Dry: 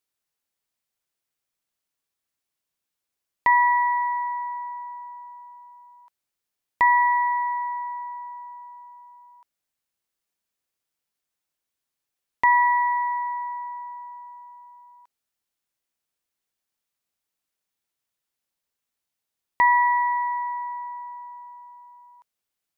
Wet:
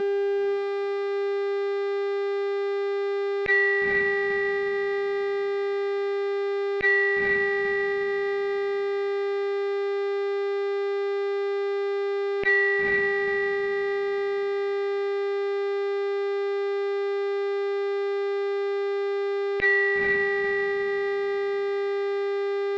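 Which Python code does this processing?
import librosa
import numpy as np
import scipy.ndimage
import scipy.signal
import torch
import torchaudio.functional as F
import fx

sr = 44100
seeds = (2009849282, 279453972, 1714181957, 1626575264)

p1 = scipy.signal.sosfilt(scipy.signal.cheby1(3, 1.0, [280.0, 2100.0], 'bandstop', fs=sr, output='sos'), x)
p2 = fx.low_shelf(p1, sr, hz=180.0, db=9.5)
p3 = fx.dmg_buzz(p2, sr, base_hz=400.0, harmonics=22, level_db=-42.0, tilt_db=-4, odd_only=False)
p4 = fx.air_absorb(p3, sr, metres=330.0)
p5 = fx.small_body(p4, sr, hz=(210.0, 400.0, 1500.0), ring_ms=40, db=14)
p6 = p5 + fx.echo_diffused(p5, sr, ms=484, feedback_pct=48, wet_db=-8.5, dry=0)
p7 = fx.transformer_sat(p6, sr, knee_hz=1100.0)
y = F.gain(torch.from_numpy(p7), 8.5).numpy()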